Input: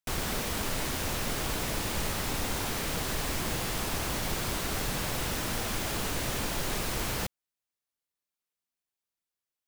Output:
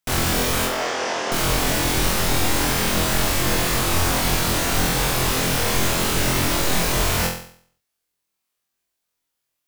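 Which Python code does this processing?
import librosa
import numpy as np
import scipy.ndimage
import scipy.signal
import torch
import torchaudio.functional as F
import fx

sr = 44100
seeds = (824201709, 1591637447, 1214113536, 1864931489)

y = fx.cabinet(x, sr, low_hz=400.0, low_slope=12, high_hz=5800.0, hz=(430.0, 670.0, 2400.0, 4000.0), db=(4, 4, -4, -9), at=(0.65, 1.32))
y = fx.room_flutter(y, sr, wall_m=4.0, rt60_s=0.55)
y = y * 10.0 ** (8.0 / 20.0)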